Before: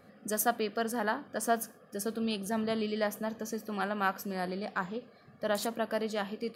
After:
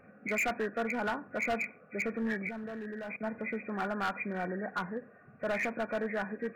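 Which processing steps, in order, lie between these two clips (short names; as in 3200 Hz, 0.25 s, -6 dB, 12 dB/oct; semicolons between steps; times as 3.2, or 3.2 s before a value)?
nonlinear frequency compression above 1400 Hz 4:1; overloaded stage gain 27.5 dB; 2.49–3.23 level quantiser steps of 20 dB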